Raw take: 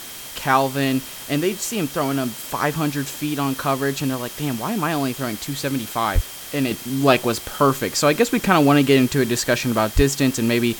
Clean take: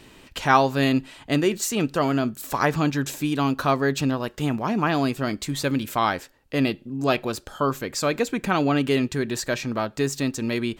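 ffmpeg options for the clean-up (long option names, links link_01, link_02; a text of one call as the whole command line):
ffmpeg -i in.wav -filter_complex "[0:a]bandreject=frequency=3200:width=30,asplit=3[link_01][link_02][link_03];[link_01]afade=type=out:start_time=6.14:duration=0.02[link_04];[link_02]highpass=frequency=140:width=0.5412,highpass=frequency=140:width=1.3066,afade=type=in:start_time=6.14:duration=0.02,afade=type=out:start_time=6.26:duration=0.02[link_05];[link_03]afade=type=in:start_time=6.26:duration=0.02[link_06];[link_04][link_05][link_06]amix=inputs=3:normalize=0,asplit=3[link_07][link_08][link_09];[link_07]afade=type=out:start_time=9.95:duration=0.02[link_10];[link_08]highpass=frequency=140:width=0.5412,highpass=frequency=140:width=1.3066,afade=type=in:start_time=9.95:duration=0.02,afade=type=out:start_time=10.07:duration=0.02[link_11];[link_09]afade=type=in:start_time=10.07:duration=0.02[link_12];[link_10][link_11][link_12]amix=inputs=3:normalize=0,afwtdn=0.018,asetnsamples=nb_out_samples=441:pad=0,asendcmd='6.71 volume volume -6.5dB',volume=0dB" out.wav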